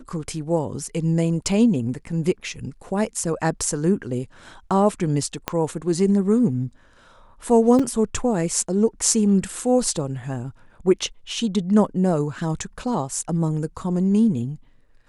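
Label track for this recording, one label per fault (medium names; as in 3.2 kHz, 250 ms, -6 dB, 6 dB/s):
5.480000	5.480000	pop -7 dBFS
7.790000	7.790000	dropout 4.7 ms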